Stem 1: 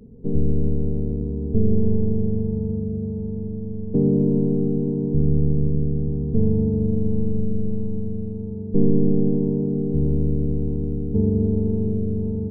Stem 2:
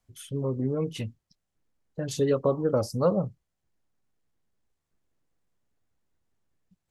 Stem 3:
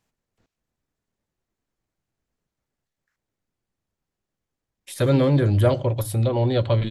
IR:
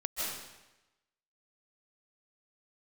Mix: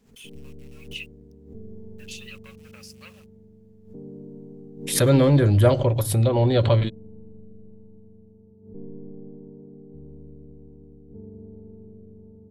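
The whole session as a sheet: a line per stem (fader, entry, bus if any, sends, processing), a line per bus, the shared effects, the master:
-16.5 dB, 0.00 s, no send, low shelf 370 Hz -8.5 dB
-10.0 dB, 0.00 s, no send, sample leveller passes 1; resonant high-pass 2600 Hz, resonance Q 9.5; bit-crush 8-bit
+1.5 dB, 0.00 s, no send, dry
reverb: off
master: backwards sustainer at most 100 dB/s

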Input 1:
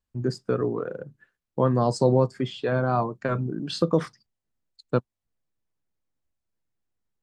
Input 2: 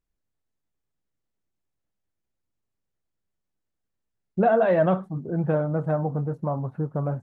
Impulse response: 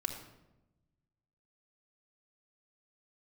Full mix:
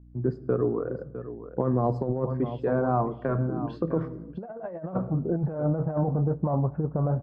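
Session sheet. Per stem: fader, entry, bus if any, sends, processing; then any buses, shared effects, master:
-5.0 dB, 0.00 s, send -11 dB, echo send -10 dB, auto duck -12 dB, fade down 0.70 s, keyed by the second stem
+2.0 dB, 0.00 s, send -20 dB, no echo send, low shelf 110 Hz -2.5 dB; hum 60 Hz, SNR 28 dB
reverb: on, RT60 0.95 s, pre-delay 3 ms
echo: echo 0.656 s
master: LPF 1100 Hz 12 dB/oct; negative-ratio compressor -25 dBFS, ratio -0.5

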